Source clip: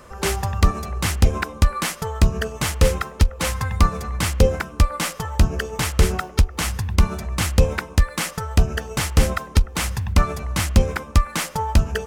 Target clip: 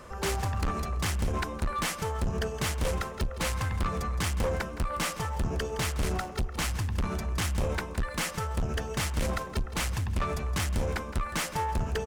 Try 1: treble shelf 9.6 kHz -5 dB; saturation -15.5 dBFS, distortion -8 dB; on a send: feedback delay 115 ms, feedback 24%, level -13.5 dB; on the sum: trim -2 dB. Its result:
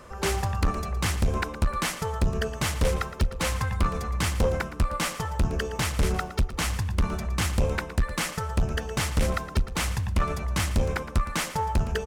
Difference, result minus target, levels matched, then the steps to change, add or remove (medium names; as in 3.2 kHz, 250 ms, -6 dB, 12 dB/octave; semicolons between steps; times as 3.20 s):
echo 51 ms early; saturation: distortion -5 dB
change: saturation -23 dBFS, distortion -3 dB; change: feedback delay 166 ms, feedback 24%, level -13.5 dB